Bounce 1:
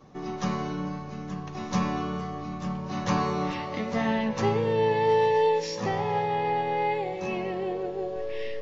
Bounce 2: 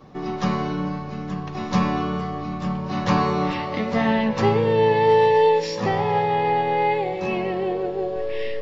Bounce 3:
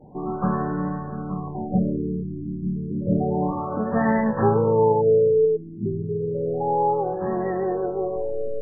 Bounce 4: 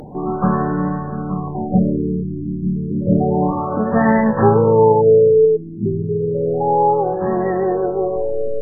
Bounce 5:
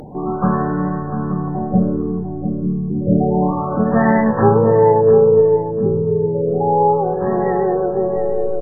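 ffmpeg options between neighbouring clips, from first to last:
ffmpeg -i in.wav -af "equalizer=frequency=6300:width_type=o:width=0.29:gain=-9,volume=6dB" out.wav
ffmpeg -i in.wav -af "afftfilt=real='re*lt(b*sr/1024,390*pow(2000/390,0.5+0.5*sin(2*PI*0.3*pts/sr)))':imag='im*lt(b*sr/1024,390*pow(2000/390,0.5+0.5*sin(2*PI*0.3*pts/sr)))':win_size=1024:overlap=0.75" out.wav
ffmpeg -i in.wav -af "acompressor=mode=upward:threshold=-35dB:ratio=2.5,volume=6.5dB" out.wav
ffmpeg -i in.wav -filter_complex "[0:a]asplit=2[link_01][link_02];[link_02]adelay=699,lowpass=frequency=1200:poles=1,volume=-9dB,asplit=2[link_03][link_04];[link_04]adelay=699,lowpass=frequency=1200:poles=1,volume=0.29,asplit=2[link_05][link_06];[link_06]adelay=699,lowpass=frequency=1200:poles=1,volume=0.29[link_07];[link_01][link_03][link_05][link_07]amix=inputs=4:normalize=0" out.wav

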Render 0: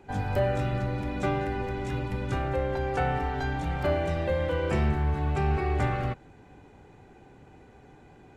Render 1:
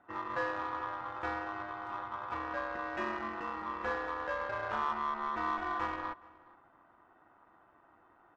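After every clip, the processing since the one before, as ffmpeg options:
ffmpeg -i in.wav -filter_complex "[0:a]aeval=exprs='val(0)*sin(2*PI*1100*n/s)':channel_layout=same,adynamicsmooth=sensitivity=1.5:basefreq=1600,asplit=2[link_01][link_02];[link_02]adelay=419.8,volume=-22dB,highshelf=frequency=4000:gain=-9.45[link_03];[link_01][link_03]amix=inputs=2:normalize=0,volume=-5.5dB" out.wav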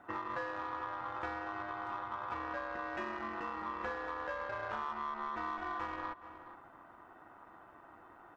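ffmpeg -i in.wav -af "acompressor=threshold=-45dB:ratio=4,volume=7dB" out.wav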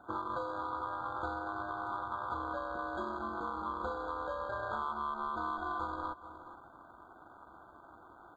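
ffmpeg -i in.wav -filter_complex "[0:a]equalizer=frequency=65:width_type=o:width=0.37:gain=9.5,asplit=2[link_01][link_02];[link_02]aeval=exprs='sgn(val(0))*max(abs(val(0))-0.00112,0)':channel_layout=same,volume=-9dB[link_03];[link_01][link_03]amix=inputs=2:normalize=0,afftfilt=real='re*eq(mod(floor(b*sr/1024/1600),2),0)':imag='im*eq(mod(floor(b*sr/1024/1600),2),0)':win_size=1024:overlap=0.75" out.wav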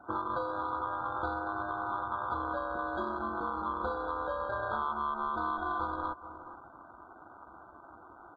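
ffmpeg -i in.wav -af "afftdn=noise_reduction=14:noise_floor=-60,volume=3.5dB" out.wav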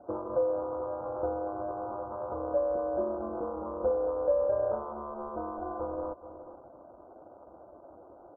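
ffmpeg -i in.wav -af "lowpass=frequency=560:width_type=q:width=4.9,volume=-1dB" out.wav

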